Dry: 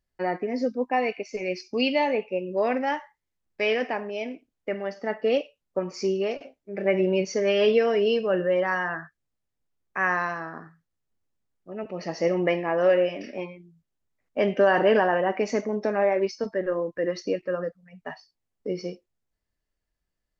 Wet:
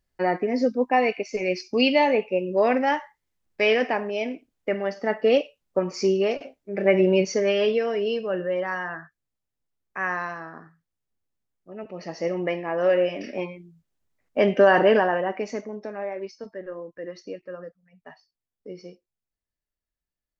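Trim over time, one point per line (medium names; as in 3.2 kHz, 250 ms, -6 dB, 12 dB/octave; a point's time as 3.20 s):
7.25 s +4 dB
7.76 s -3 dB
12.62 s -3 dB
13.32 s +3.5 dB
14.76 s +3.5 dB
15.90 s -9 dB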